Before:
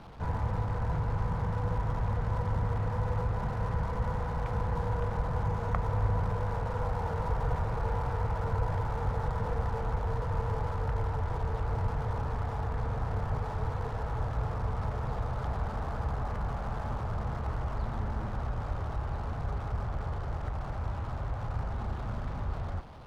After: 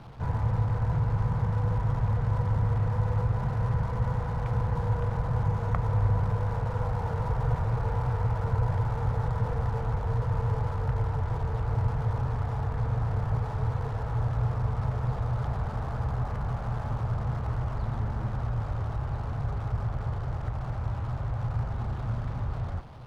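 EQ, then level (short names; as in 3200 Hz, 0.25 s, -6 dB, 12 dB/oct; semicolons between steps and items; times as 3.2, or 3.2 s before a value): bell 120 Hz +10 dB 0.49 oct; 0.0 dB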